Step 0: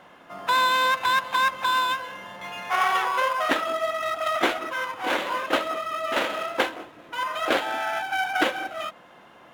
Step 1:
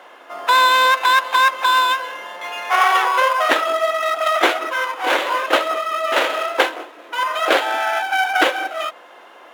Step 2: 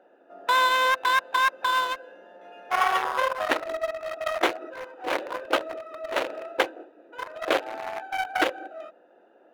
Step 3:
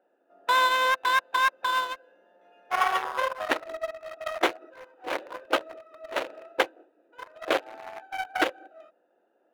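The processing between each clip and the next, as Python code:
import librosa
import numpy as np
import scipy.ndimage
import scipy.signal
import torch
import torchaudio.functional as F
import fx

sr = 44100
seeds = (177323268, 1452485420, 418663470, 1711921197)

y1 = scipy.signal.sosfilt(scipy.signal.butter(4, 340.0, 'highpass', fs=sr, output='sos'), x)
y1 = y1 * librosa.db_to_amplitude(7.5)
y2 = fx.wiener(y1, sr, points=41)
y2 = y2 * librosa.db_to_amplitude(-5.5)
y3 = fx.upward_expand(y2, sr, threshold_db=-42.0, expansion=1.5)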